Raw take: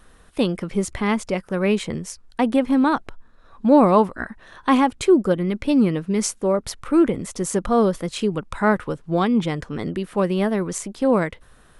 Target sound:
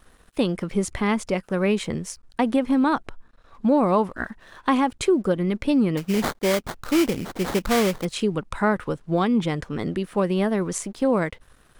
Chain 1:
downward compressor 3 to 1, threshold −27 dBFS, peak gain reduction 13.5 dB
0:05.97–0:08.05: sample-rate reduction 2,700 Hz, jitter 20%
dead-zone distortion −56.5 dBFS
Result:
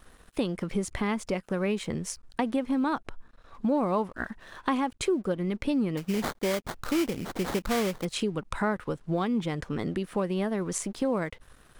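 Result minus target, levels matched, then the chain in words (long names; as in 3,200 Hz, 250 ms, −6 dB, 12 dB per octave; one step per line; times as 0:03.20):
downward compressor: peak gain reduction +7 dB
downward compressor 3 to 1, threshold −16.5 dBFS, peak gain reduction 6.5 dB
0:05.97–0:08.05: sample-rate reduction 2,700 Hz, jitter 20%
dead-zone distortion −56.5 dBFS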